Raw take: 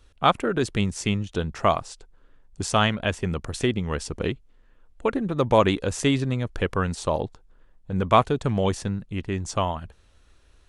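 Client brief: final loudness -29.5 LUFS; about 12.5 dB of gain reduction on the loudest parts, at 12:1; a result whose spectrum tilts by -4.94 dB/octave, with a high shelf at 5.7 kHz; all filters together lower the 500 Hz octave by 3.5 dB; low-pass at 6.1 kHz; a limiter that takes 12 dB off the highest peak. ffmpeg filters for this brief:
-af "lowpass=6100,equalizer=f=500:t=o:g=-4.5,highshelf=f=5700:g=4,acompressor=threshold=0.0501:ratio=12,volume=2.37,alimiter=limit=0.126:level=0:latency=1"

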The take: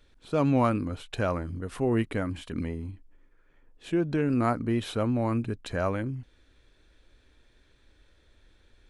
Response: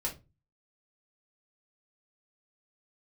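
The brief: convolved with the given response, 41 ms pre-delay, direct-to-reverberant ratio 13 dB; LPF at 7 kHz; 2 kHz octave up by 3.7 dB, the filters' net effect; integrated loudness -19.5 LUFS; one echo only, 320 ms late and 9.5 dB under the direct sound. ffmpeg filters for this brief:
-filter_complex "[0:a]lowpass=7000,equalizer=f=2000:t=o:g=5,aecho=1:1:320:0.335,asplit=2[s0][s1];[1:a]atrim=start_sample=2205,adelay=41[s2];[s1][s2]afir=irnorm=-1:irlink=0,volume=0.158[s3];[s0][s3]amix=inputs=2:normalize=0,volume=2.66"

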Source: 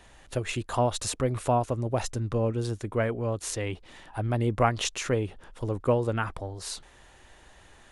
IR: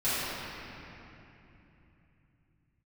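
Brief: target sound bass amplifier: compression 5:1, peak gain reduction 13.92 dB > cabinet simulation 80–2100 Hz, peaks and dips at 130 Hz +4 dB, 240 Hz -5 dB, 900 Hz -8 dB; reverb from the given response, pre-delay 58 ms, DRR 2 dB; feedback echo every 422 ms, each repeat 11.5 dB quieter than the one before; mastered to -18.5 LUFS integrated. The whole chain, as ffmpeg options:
-filter_complex "[0:a]aecho=1:1:422|844|1266:0.266|0.0718|0.0194,asplit=2[s0][s1];[1:a]atrim=start_sample=2205,adelay=58[s2];[s1][s2]afir=irnorm=-1:irlink=0,volume=0.188[s3];[s0][s3]amix=inputs=2:normalize=0,acompressor=threshold=0.0251:ratio=5,highpass=f=80:w=0.5412,highpass=f=80:w=1.3066,equalizer=f=130:t=q:w=4:g=4,equalizer=f=240:t=q:w=4:g=-5,equalizer=f=900:t=q:w=4:g=-8,lowpass=f=2100:w=0.5412,lowpass=f=2100:w=1.3066,volume=7.5"

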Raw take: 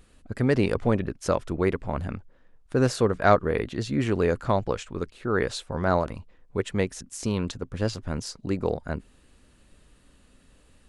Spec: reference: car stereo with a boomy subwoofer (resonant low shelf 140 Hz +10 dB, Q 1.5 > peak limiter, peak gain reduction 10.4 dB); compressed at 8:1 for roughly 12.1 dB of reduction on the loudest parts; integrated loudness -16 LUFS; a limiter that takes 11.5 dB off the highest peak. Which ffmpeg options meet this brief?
-af "acompressor=threshold=0.0562:ratio=8,alimiter=level_in=1.19:limit=0.0631:level=0:latency=1,volume=0.841,lowshelf=f=140:t=q:w=1.5:g=10,volume=10,alimiter=limit=0.501:level=0:latency=1"

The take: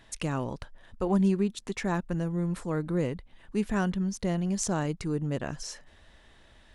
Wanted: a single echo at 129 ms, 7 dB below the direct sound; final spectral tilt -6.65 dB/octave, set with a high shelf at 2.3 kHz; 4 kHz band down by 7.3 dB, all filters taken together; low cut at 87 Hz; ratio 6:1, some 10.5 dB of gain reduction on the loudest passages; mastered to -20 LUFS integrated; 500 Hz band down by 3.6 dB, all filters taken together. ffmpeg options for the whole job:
-af "highpass=87,equalizer=f=500:t=o:g=-4.5,highshelf=f=2300:g=-4,equalizer=f=4000:t=o:g=-6.5,acompressor=threshold=0.0224:ratio=6,aecho=1:1:129:0.447,volume=7.5"

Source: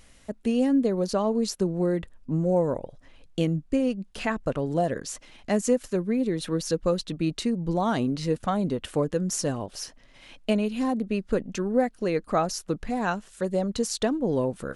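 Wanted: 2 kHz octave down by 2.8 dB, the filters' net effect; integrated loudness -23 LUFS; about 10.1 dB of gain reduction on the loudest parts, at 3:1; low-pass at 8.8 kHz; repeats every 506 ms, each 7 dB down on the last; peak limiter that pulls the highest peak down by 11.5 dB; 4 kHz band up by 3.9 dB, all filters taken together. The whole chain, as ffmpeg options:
-af "lowpass=8800,equalizer=f=2000:t=o:g=-5.5,equalizer=f=4000:t=o:g=6.5,acompressor=threshold=0.0251:ratio=3,alimiter=level_in=1.68:limit=0.0631:level=0:latency=1,volume=0.596,aecho=1:1:506|1012|1518|2024|2530:0.447|0.201|0.0905|0.0407|0.0183,volume=5.01"

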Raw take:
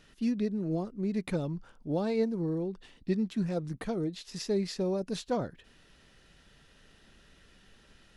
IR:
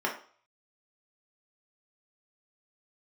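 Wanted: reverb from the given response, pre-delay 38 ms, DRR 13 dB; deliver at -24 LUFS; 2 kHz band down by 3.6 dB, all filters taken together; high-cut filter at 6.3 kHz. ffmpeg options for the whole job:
-filter_complex "[0:a]lowpass=6300,equalizer=f=2000:t=o:g=-4.5,asplit=2[s0][s1];[1:a]atrim=start_sample=2205,adelay=38[s2];[s1][s2]afir=irnorm=-1:irlink=0,volume=0.075[s3];[s0][s3]amix=inputs=2:normalize=0,volume=2.82"

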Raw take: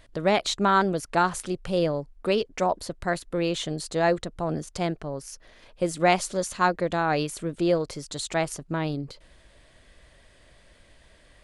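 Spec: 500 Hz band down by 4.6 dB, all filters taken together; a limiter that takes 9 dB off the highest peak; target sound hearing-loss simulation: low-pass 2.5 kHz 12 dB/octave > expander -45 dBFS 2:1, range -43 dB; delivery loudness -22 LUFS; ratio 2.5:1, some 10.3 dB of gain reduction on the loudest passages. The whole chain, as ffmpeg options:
-af "equalizer=f=500:t=o:g=-6,acompressor=threshold=0.02:ratio=2.5,alimiter=level_in=1.68:limit=0.0631:level=0:latency=1,volume=0.596,lowpass=2500,agate=range=0.00708:threshold=0.00562:ratio=2,volume=8.41"

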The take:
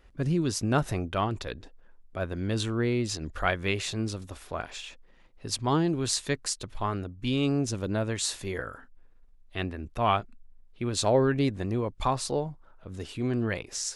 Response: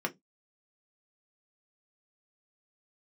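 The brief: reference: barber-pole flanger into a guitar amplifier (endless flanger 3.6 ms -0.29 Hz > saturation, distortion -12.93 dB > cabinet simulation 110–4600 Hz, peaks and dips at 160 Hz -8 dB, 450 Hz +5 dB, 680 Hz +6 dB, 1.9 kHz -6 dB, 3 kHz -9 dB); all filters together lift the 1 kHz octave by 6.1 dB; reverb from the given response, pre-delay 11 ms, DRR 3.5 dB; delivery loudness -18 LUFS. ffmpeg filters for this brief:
-filter_complex "[0:a]equalizer=f=1000:t=o:g=5.5,asplit=2[s0][s1];[1:a]atrim=start_sample=2205,adelay=11[s2];[s1][s2]afir=irnorm=-1:irlink=0,volume=0.355[s3];[s0][s3]amix=inputs=2:normalize=0,asplit=2[s4][s5];[s5]adelay=3.6,afreqshift=-0.29[s6];[s4][s6]amix=inputs=2:normalize=1,asoftclip=threshold=0.0841,highpass=110,equalizer=f=160:t=q:w=4:g=-8,equalizer=f=450:t=q:w=4:g=5,equalizer=f=680:t=q:w=4:g=6,equalizer=f=1900:t=q:w=4:g=-6,equalizer=f=3000:t=q:w=4:g=-9,lowpass=f=4600:w=0.5412,lowpass=f=4600:w=1.3066,volume=4.47"

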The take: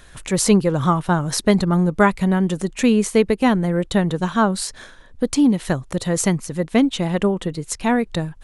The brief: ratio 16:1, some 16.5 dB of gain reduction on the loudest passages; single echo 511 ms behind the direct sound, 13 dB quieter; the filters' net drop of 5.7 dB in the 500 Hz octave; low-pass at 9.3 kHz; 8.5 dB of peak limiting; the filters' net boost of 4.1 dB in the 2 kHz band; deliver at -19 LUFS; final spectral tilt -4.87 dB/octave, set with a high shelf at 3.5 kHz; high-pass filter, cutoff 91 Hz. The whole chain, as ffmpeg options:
-af "highpass=91,lowpass=9300,equalizer=f=500:t=o:g=-7.5,equalizer=f=2000:t=o:g=6.5,highshelf=f=3500:g=-3.5,acompressor=threshold=0.0355:ratio=16,alimiter=level_in=1.06:limit=0.0631:level=0:latency=1,volume=0.944,aecho=1:1:511:0.224,volume=5.96"

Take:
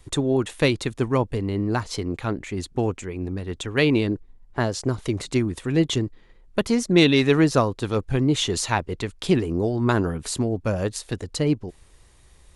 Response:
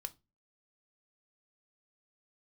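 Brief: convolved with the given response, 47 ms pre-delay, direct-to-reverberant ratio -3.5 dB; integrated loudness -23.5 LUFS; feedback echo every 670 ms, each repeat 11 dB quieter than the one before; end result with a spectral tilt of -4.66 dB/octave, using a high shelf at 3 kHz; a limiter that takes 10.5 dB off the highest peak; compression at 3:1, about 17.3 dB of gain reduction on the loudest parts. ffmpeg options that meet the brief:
-filter_complex "[0:a]highshelf=f=3000:g=6.5,acompressor=threshold=0.0141:ratio=3,alimiter=level_in=1.41:limit=0.0631:level=0:latency=1,volume=0.708,aecho=1:1:670|1340|2010:0.282|0.0789|0.0221,asplit=2[s0][s1];[1:a]atrim=start_sample=2205,adelay=47[s2];[s1][s2]afir=irnorm=-1:irlink=0,volume=2.11[s3];[s0][s3]amix=inputs=2:normalize=0,volume=2.99"

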